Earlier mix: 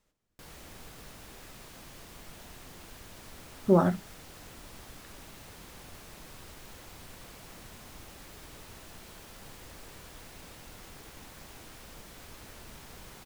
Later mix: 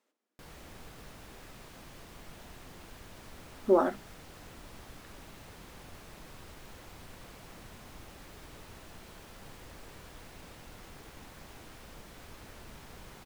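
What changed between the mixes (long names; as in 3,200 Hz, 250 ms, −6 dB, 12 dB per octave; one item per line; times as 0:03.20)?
speech: add linear-phase brick-wall high-pass 210 Hz
master: add high-shelf EQ 3,800 Hz −6 dB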